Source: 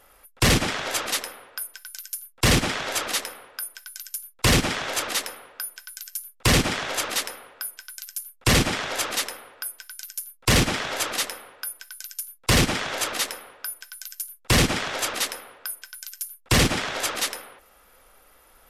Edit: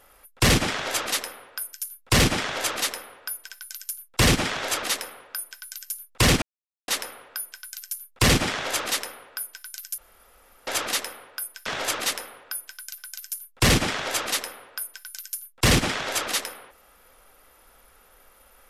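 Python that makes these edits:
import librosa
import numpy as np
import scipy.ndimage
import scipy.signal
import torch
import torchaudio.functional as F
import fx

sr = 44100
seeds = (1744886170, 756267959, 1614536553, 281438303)

y = fx.edit(x, sr, fx.silence(start_s=4.66, length_s=0.46),
    fx.room_tone_fill(start_s=8.22, length_s=0.69),
    fx.cut(start_s=9.9, length_s=0.88),
    fx.move(start_s=12.1, length_s=1.76, to_s=1.73), tone=tone)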